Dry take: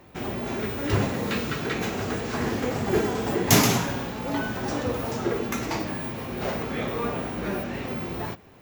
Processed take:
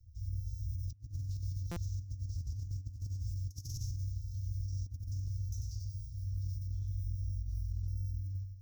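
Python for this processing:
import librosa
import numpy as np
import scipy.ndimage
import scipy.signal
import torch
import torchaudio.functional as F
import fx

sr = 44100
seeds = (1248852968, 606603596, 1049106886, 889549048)

p1 = fx.rattle_buzz(x, sr, strikes_db=-24.0, level_db=-14.0)
p2 = fx.high_shelf(p1, sr, hz=9700.0, db=5.0)
p3 = (np.mod(10.0 ** (16.5 / 20.0) * p2 + 1.0, 2.0) - 1.0) / 10.0 ** (16.5 / 20.0)
p4 = p2 + F.gain(torch.from_numpy(p3), -10.5).numpy()
p5 = scipy.signal.sosfilt(scipy.signal.cheby1(5, 1.0, [100.0, 5500.0], 'bandstop', fs=sr, output='sos'), p4)
p6 = fx.air_absorb(p5, sr, metres=310.0)
p7 = fx.echo_feedback(p6, sr, ms=94, feedback_pct=44, wet_db=-6.0)
p8 = fx.over_compress(p7, sr, threshold_db=-38.0, ratio=-0.5)
p9 = fx.buffer_glitch(p8, sr, at_s=(1.71,), block=256, repeats=8)
y = F.gain(torch.from_numpy(p9), 1.0).numpy()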